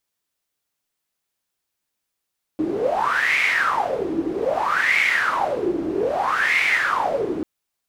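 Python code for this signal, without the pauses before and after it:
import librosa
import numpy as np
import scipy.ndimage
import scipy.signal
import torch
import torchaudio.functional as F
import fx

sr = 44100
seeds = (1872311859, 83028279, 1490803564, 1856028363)

y = fx.wind(sr, seeds[0], length_s=4.84, low_hz=320.0, high_hz=2200.0, q=10.0, gusts=3, swing_db=5)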